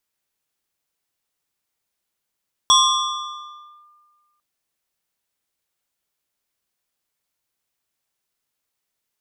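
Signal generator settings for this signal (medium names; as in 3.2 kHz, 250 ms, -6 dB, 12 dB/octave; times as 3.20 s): FM tone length 1.70 s, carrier 1.2 kHz, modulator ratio 1.88, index 2.1, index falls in 1.16 s linear, decay 1.71 s, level -8.5 dB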